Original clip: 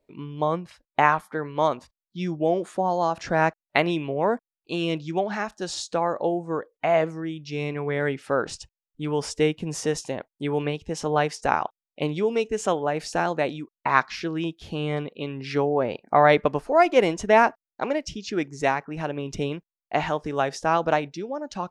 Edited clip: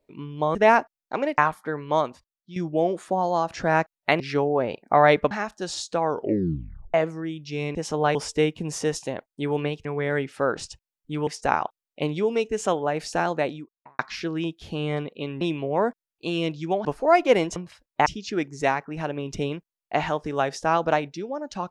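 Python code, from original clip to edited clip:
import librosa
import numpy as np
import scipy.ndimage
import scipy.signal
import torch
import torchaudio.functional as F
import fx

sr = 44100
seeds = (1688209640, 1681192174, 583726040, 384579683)

y = fx.studio_fade_out(x, sr, start_s=13.36, length_s=0.63)
y = fx.edit(y, sr, fx.swap(start_s=0.55, length_s=0.5, other_s=17.23, other_length_s=0.83),
    fx.fade_out_to(start_s=1.62, length_s=0.61, floor_db=-10.5),
    fx.swap(start_s=3.87, length_s=1.44, other_s=15.41, other_length_s=1.11),
    fx.tape_stop(start_s=5.99, length_s=0.95),
    fx.swap(start_s=7.75, length_s=1.42, other_s=10.87, other_length_s=0.4), tone=tone)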